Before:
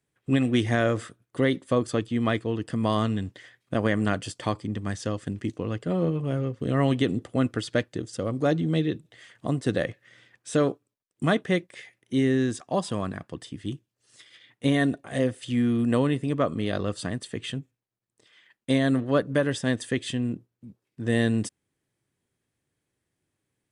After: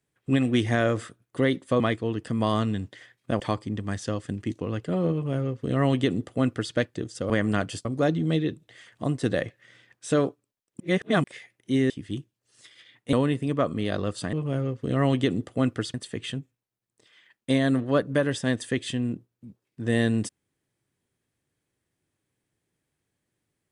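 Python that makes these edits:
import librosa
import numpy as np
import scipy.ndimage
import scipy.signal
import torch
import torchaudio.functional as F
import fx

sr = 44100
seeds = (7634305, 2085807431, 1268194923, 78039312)

y = fx.edit(x, sr, fx.cut(start_s=1.8, length_s=0.43),
    fx.move(start_s=3.83, length_s=0.55, to_s=8.28),
    fx.duplicate(start_s=6.11, length_s=1.61, to_s=17.14),
    fx.reverse_span(start_s=11.23, length_s=0.44),
    fx.cut(start_s=12.33, length_s=1.12),
    fx.cut(start_s=14.68, length_s=1.26), tone=tone)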